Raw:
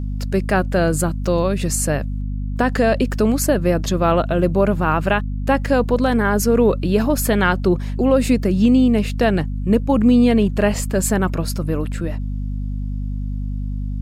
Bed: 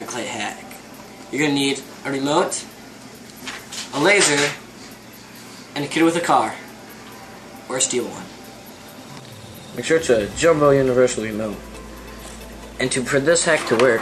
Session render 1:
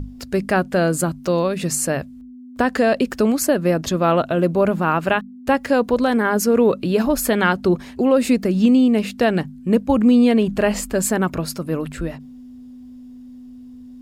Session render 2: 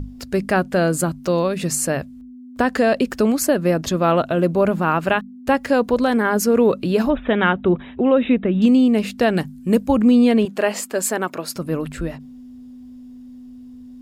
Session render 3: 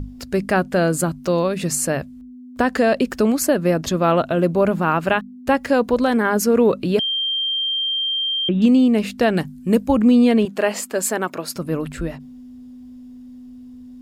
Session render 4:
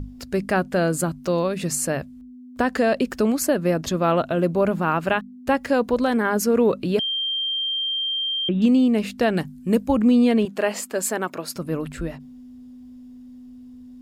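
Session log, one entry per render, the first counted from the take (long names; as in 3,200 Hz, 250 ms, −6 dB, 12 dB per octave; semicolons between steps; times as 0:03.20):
mains-hum notches 50/100/150/200 Hz
0:07.10–0:08.62: linear-phase brick-wall low-pass 3,900 Hz; 0:09.37–0:09.89: high-shelf EQ 5,800 Hz +10.5 dB; 0:10.45–0:11.56: high-pass filter 340 Hz
0:06.99–0:08.49: beep over 3,170 Hz −19 dBFS
level −3 dB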